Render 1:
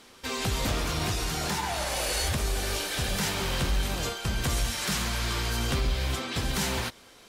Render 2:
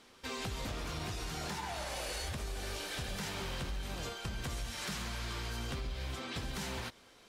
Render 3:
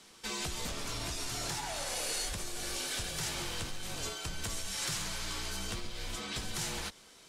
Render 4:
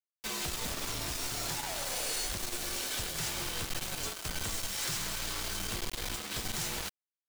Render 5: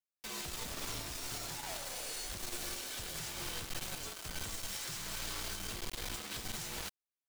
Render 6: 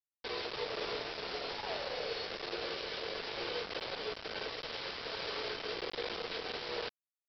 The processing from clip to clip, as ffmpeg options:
ffmpeg -i in.wav -af "highshelf=frequency=8200:gain=-6.5,acompressor=threshold=-29dB:ratio=6,volume=-6.5dB" out.wav
ffmpeg -i in.wav -af "equalizer=frequency=8400:width_type=o:width=1.8:gain=10,afreqshift=-40" out.wav
ffmpeg -i in.wav -af "acrusher=bits=5:mix=0:aa=0.000001" out.wav
ffmpeg -i in.wav -af "alimiter=level_in=3.5dB:limit=-24dB:level=0:latency=1:release=139,volume=-3.5dB,volume=-4dB" out.wav
ffmpeg -i in.wav -af "highpass=frequency=450:width_type=q:width=5.5,aresample=11025,acrusher=bits=6:mix=0:aa=0.000001,aresample=44100,volume=1.5dB" out.wav

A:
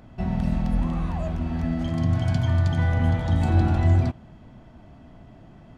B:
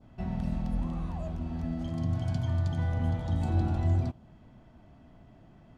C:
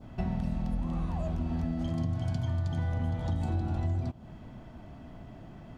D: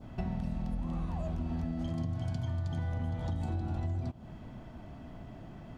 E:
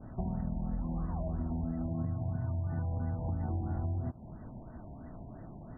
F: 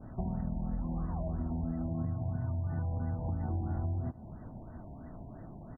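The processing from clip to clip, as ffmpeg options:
ffmpeg -i in.wav -af "adynamicequalizer=threshold=0.00282:dfrequency=1900:dqfactor=1.1:tfrequency=1900:tqfactor=1.1:attack=5:release=100:ratio=0.375:range=3:mode=cutabove:tftype=bell,volume=-7.5dB" out.wav
ffmpeg -i in.wav -af "acompressor=threshold=-36dB:ratio=6,volume=8dB" out.wav
ffmpeg -i in.wav -af "acompressor=threshold=-33dB:ratio=2" out.wav
ffmpeg -i in.wav -af "afftfilt=real='re*lt(b*sr/1024,990*pow(2000/990,0.5+0.5*sin(2*PI*3*pts/sr)))':imag='im*lt(b*sr/1024,990*pow(2000/990,0.5+0.5*sin(2*PI*3*pts/sr)))':win_size=1024:overlap=0.75" out.wav
ffmpeg -i in.wav -af "aecho=1:1:737:0.0794" out.wav

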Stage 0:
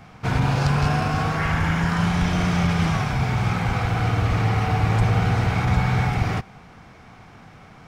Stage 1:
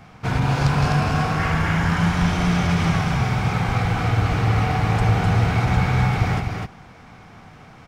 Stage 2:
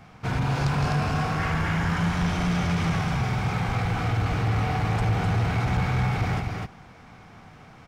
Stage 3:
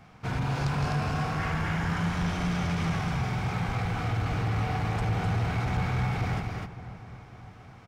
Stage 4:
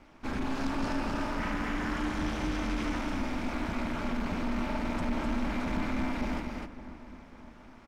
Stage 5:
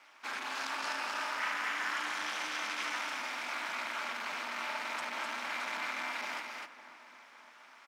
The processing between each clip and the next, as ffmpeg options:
ffmpeg -i in.wav -af "aecho=1:1:254:0.631" out.wav
ffmpeg -i in.wav -af "asoftclip=type=tanh:threshold=-13dB,volume=-3.5dB" out.wav
ffmpeg -i in.wav -filter_complex "[0:a]asplit=2[link_01][link_02];[link_02]adelay=557,lowpass=frequency=1700:poles=1,volume=-14.5dB,asplit=2[link_03][link_04];[link_04]adelay=557,lowpass=frequency=1700:poles=1,volume=0.53,asplit=2[link_05][link_06];[link_06]adelay=557,lowpass=frequency=1700:poles=1,volume=0.53,asplit=2[link_07][link_08];[link_08]adelay=557,lowpass=frequency=1700:poles=1,volume=0.53,asplit=2[link_09][link_10];[link_10]adelay=557,lowpass=frequency=1700:poles=1,volume=0.53[link_11];[link_01][link_03][link_05][link_07][link_09][link_11]amix=inputs=6:normalize=0,volume=-4dB" out.wav
ffmpeg -i in.wav -af "aeval=exprs='val(0)*sin(2*PI*130*n/s)':channel_layout=same" out.wav
ffmpeg -i in.wav -af "highpass=1200,volume=4.5dB" out.wav

